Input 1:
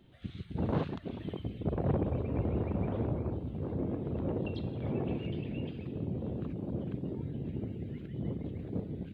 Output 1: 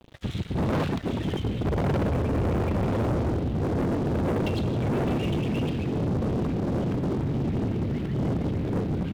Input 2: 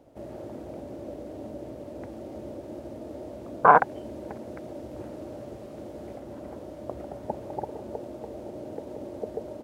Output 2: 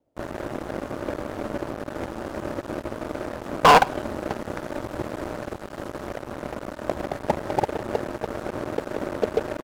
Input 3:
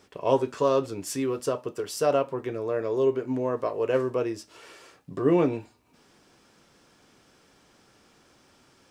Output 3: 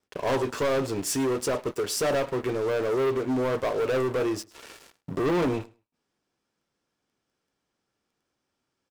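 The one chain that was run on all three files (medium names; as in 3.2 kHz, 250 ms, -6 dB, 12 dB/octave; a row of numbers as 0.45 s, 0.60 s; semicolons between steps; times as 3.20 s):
gate with hold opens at -55 dBFS; waveshaping leveller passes 5; feedback delay 105 ms, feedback 15%, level -23 dB; normalise loudness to -27 LUFS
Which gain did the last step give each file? -3.0 dB, -7.0 dB, -11.5 dB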